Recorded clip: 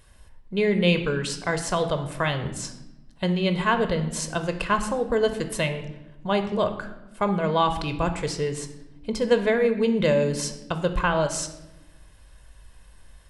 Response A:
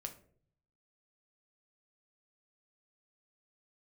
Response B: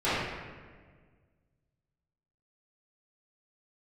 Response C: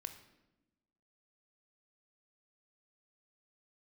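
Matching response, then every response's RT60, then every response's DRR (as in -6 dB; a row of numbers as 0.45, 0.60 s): C; 0.55, 1.6, 1.0 s; 5.0, -15.5, 7.5 dB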